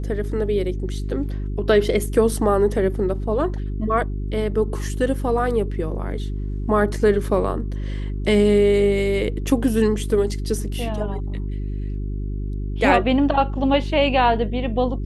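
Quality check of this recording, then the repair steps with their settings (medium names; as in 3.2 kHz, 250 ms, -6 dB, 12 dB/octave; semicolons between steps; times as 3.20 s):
hum 50 Hz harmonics 8 -26 dBFS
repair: de-hum 50 Hz, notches 8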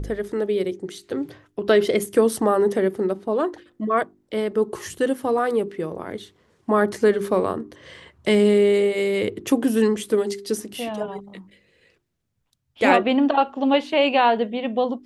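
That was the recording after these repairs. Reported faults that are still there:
nothing left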